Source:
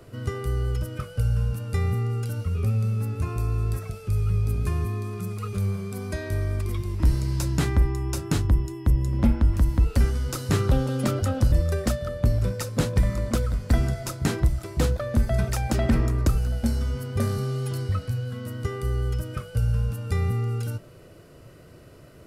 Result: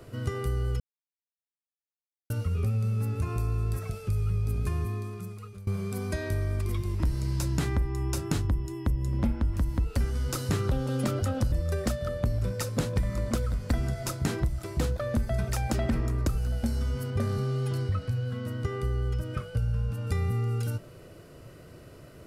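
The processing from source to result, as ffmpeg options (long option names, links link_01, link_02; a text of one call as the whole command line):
ffmpeg -i in.wav -filter_complex "[0:a]asettb=1/sr,asplit=3[link_01][link_02][link_03];[link_01]atrim=end=17.104[link_04];[link_02]atrim=start=17.1:end=20.07,asetpts=PTS-STARTPTS,afade=type=in:duration=0.004:curve=qsin,afade=type=out:start_time=2.966:duration=0.004:curve=qsin,highshelf=frequency=6700:gain=-9.5[link_05];[link_03]atrim=start=20.066[link_06];[link_04][link_05]acrossfade=duration=0.004:curve1=hsin:curve2=qsin[link_07];[link_07][link_06]acrossfade=duration=0.004:curve1=qsin:curve2=hsin,asplit=4[link_08][link_09][link_10][link_11];[link_08]atrim=end=0.8,asetpts=PTS-STARTPTS,afade=type=out:start_time=0.796:duration=0.004:curve=hsin[link_12];[link_09]atrim=start=0.8:end=2.3,asetpts=PTS-STARTPTS,volume=0[link_13];[link_10]atrim=start=2.3:end=5.67,asetpts=PTS-STARTPTS,afade=type=in:duration=0.004:curve=hsin,afade=type=out:start_time=2.28:duration=1.09:silence=0.0749894[link_14];[link_11]atrim=start=5.67,asetpts=PTS-STARTPTS,afade=type=in:duration=0.004:curve=hsin:silence=0.0749894[link_15];[link_12][link_13][link_14][link_15]concat=n=4:v=0:a=1,acompressor=threshold=-25dB:ratio=3" out.wav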